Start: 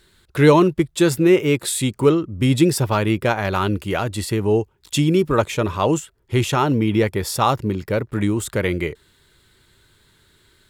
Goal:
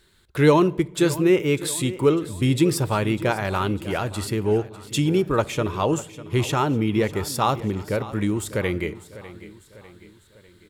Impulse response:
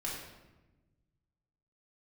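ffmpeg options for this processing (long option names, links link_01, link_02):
-filter_complex "[0:a]aecho=1:1:599|1198|1797|2396:0.15|0.0733|0.0359|0.0176,asplit=2[link_01][link_02];[1:a]atrim=start_sample=2205,asetrate=61740,aresample=44100[link_03];[link_02][link_03]afir=irnorm=-1:irlink=0,volume=-17.5dB[link_04];[link_01][link_04]amix=inputs=2:normalize=0,volume=-4dB"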